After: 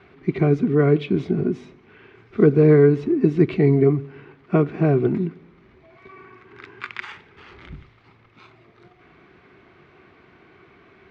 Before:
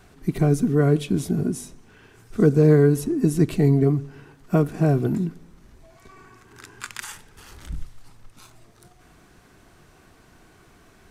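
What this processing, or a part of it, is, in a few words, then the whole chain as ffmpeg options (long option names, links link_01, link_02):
guitar cabinet: -af "highpass=88,equalizer=frequency=380:width_type=q:width=4:gain=8,equalizer=frequency=1200:width_type=q:width=4:gain=4,equalizer=frequency=2200:width_type=q:width=4:gain=9,lowpass=frequency=3700:width=0.5412,lowpass=frequency=3700:width=1.3066"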